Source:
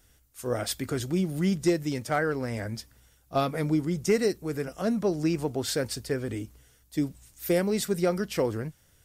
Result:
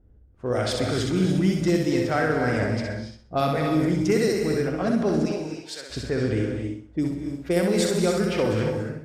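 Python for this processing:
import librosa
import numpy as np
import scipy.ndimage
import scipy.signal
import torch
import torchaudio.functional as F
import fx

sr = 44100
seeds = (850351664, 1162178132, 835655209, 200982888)

p1 = fx.differentiator(x, sr, at=(5.25, 5.9))
p2 = fx.over_compress(p1, sr, threshold_db=-33.0, ratio=-1.0)
p3 = p1 + F.gain(torch.from_numpy(p2), -3.0).numpy()
p4 = fx.env_lowpass(p3, sr, base_hz=400.0, full_db=-19.5)
p5 = fx.echo_feedback(p4, sr, ms=64, feedback_pct=35, wet_db=-4)
y = fx.rev_gated(p5, sr, seeds[0], gate_ms=310, shape='rising', drr_db=4.5)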